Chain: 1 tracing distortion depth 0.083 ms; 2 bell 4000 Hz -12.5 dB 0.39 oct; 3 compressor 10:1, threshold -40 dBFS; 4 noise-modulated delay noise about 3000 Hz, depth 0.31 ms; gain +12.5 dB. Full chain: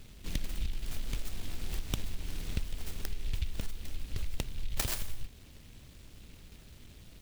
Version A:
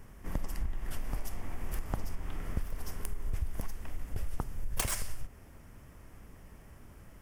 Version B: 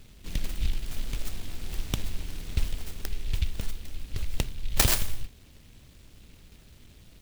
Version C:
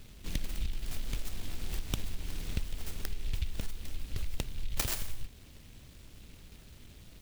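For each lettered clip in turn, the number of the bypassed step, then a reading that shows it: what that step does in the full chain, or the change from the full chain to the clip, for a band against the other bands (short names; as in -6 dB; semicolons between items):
4, 4 kHz band -6.5 dB; 3, mean gain reduction 3.0 dB; 2, crest factor change -2.0 dB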